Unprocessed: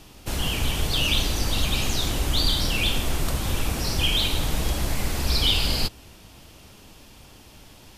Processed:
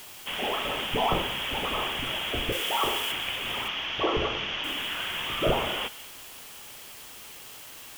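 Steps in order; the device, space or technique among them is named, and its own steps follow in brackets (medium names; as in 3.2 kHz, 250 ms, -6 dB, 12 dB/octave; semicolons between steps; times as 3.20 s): scrambled radio voice (band-pass 380–3000 Hz; frequency inversion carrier 3.6 kHz; white noise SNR 15 dB); 2.52–3.12 s: tone controls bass -13 dB, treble +8 dB; 3.68–4.64 s: elliptic low-pass 6.2 kHz, stop band 40 dB; feedback echo behind a high-pass 185 ms, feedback 44%, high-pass 1.6 kHz, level -16.5 dB; trim +3 dB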